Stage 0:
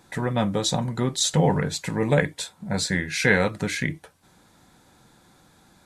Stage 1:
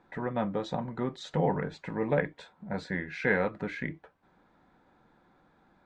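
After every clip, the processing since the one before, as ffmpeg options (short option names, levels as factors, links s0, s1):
-af "lowpass=1800,equalizer=f=100:t=o:w=1.4:g=-9,volume=0.562"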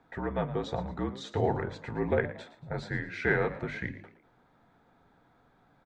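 -filter_complex "[0:a]afreqshift=-53,bandreject=f=50:t=h:w=6,bandreject=f=100:t=h:w=6,bandreject=f=150:t=h:w=6,bandreject=f=200:t=h:w=6,asplit=4[s0][s1][s2][s3];[s1]adelay=114,afreqshift=65,volume=0.178[s4];[s2]adelay=228,afreqshift=130,volume=0.0638[s5];[s3]adelay=342,afreqshift=195,volume=0.0232[s6];[s0][s4][s5][s6]amix=inputs=4:normalize=0"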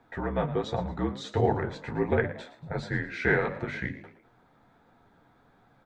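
-af "flanger=delay=8.4:depth=6.9:regen=-34:speed=1.4:shape=sinusoidal,volume=2.11"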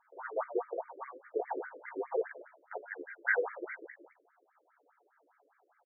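-filter_complex "[0:a]asplit=2[s0][s1];[s1]adelay=14,volume=0.447[s2];[s0][s2]amix=inputs=2:normalize=0,afftfilt=real='re*between(b*sr/1024,410*pow(1700/410,0.5+0.5*sin(2*PI*4.9*pts/sr))/1.41,410*pow(1700/410,0.5+0.5*sin(2*PI*4.9*pts/sr))*1.41)':imag='im*between(b*sr/1024,410*pow(1700/410,0.5+0.5*sin(2*PI*4.9*pts/sr))/1.41,410*pow(1700/410,0.5+0.5*sin(2*PI*4.9*pts/sr))*1.41)':win_size=1024:overlap=0.75,volume=0.75"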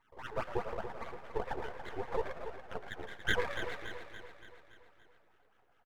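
-filter_complex "[0:a]asplit=2[s0][s1];[s1]asplit=6[s2][s3][s4][s5][s6][s7];[s2]adelay=111,afreqshift=80,volume=0.266[s8];[s3]adelay=222,afreqshift=160,volume=0.143[s9];[s4]adelay=333,afreqshift=240,volume=0.0776[s10];[s5]adelay=444,afreqshift=320,volume=0.0417[s11];[s6]adelay=555,afreqshift=400,volume=0.0226[s12];[s7]adelay=666,afreqshift=480,volume=0.0122[s13];[s8][s9][s10][s11][s12][s13]amix=inputs=6:normalize=0[s14];[s0][s14]amix=inputs=2:normalize=0,aeval=exprs='max(val(0),0)':c=same,asplit=2[s15][s16];[s16]aecho=0:1:285|570|855|1140|1425|1710:0.335|0.181|0.0977|0.0527|0.0285|0.0154[s17];[s15][s17]amix=inputs=2:normalize=0,volume=1.26"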